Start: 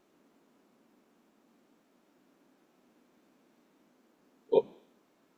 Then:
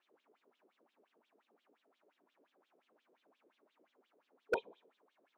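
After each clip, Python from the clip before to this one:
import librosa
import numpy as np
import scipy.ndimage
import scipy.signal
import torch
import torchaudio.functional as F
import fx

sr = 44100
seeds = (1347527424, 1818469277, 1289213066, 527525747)

y = fx.wah_lfo(x, sr, hz=5.7, low_hz=410.0, high_hz=3600.0, q=5.3)
y = 10.0 ** (-28.5 / 20.0) * (np.abs((y / 10.0 ** (-28.5 / 20.0) + 3.0) % 4.0 - 2.0) - 1.0)
y = y * 10.0 ** (6.0 / 20.0)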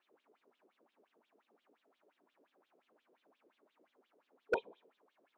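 y = fx.high_shelf(x, sr, hz=7100.0, db=-10.0)
y = y * 10.0 ** (1.0 / 20.0)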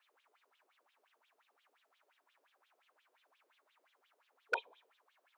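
y = scipy.signal.sosfilt(scipy.signal.butter(2, 1100.0, 'highpass', fs=sr, output='sos'), x)
y = y * 10.0 ** (5.5 / 20.0)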